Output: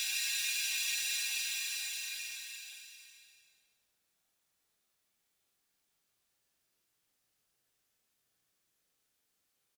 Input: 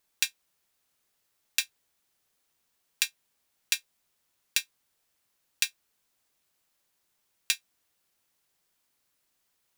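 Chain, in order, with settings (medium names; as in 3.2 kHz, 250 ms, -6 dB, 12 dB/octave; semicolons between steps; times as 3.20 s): rotary cabinet horn 6 Hz; doubling 44 ms -7.5 dB; Paulstretch 11×, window 0.50 s, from 1.54 s; trim -1.5 dB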